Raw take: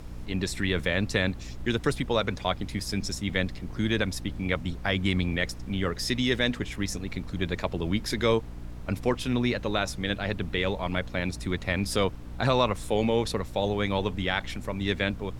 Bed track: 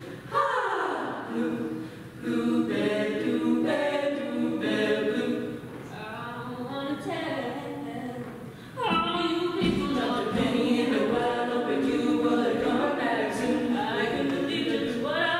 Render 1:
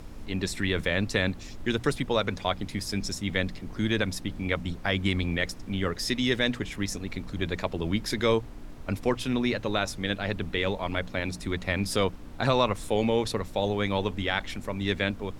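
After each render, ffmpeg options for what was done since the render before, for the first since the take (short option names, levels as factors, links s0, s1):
-af "bandreject=f=60:t=h:w=6,bandreject=f=120:t=h:w=6,bandreject=f=180:t=h:w=6"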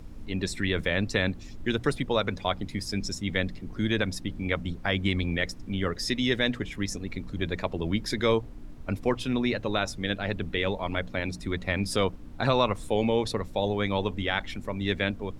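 -af "afftdn=nr=7:nf=-42"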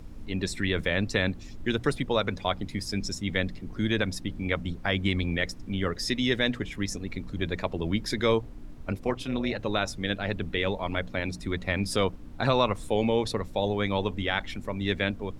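-filter_complex "[0:a]asettb=1/sr,asplit=3[s0][s1][s2];[s0]atrim=end=8.924[s3];[s1]atrim=start=8.92:end=9.59,asetpts=PTS-STARTPTS,afade=t=in:d=0.004:c=qsin,afade=t=out:st=0.666:d=0.004:c=qsin,tremolo=f=280:d=0.571[s4];[s2]atrim=start=9.586[s5];[s3][s4]acrossfade=d=0.004:c1=hsin:c2=qsin[s6];[s6][s5]acrossfade=d=0.004:c1=qsin:c2=hsin"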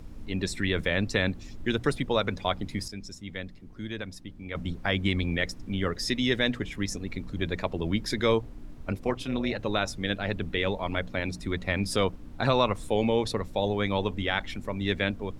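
-filter_complex "[0:a]asplit=3[s0][s1][s2];[s0]atrim=end=2.882[s3];[s1]atrim=start=2.878:end=4.552,asetpts=PTS-STARTPTS,volume=0.335[s4];[s2]atrim=start=4.548[s5];[s3][s4]acrossfade=d=0.004:c1=hsin:c2=hsin[s6];[s6][s5]acrossfade=d=0.004:c1=hsin:c2=hsin"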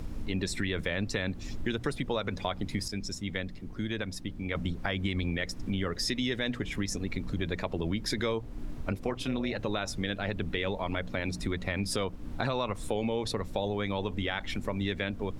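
-filter_complex "[0:a]asplit=2[s0][s1];[s1]alimiter=limit=0.0944:level=0:latency=1:release=56,volume=1.06[s2];[s0][s2]amix=inputs=2:normalize=0,acompressor=threshold=0.0316:ratio=3"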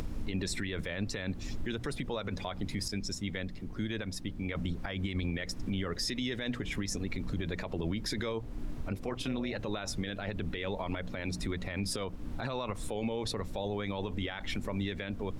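-af "alimiter=level_in=1.06:limit=0.0631:level=0:latency=1:release=38,volume=0.944,acompressor=mode=upward:threshold=0.0158:ratio=2.5"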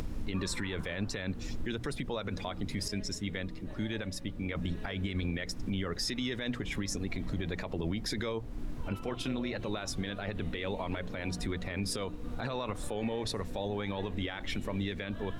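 -filter_complex "[1:a]volume=0.0562[s0];[0:a][s0]amix=inputs=2:normalize=0"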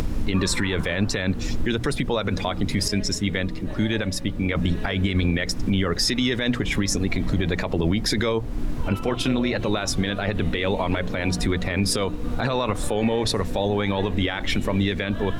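-af "volume=3.98"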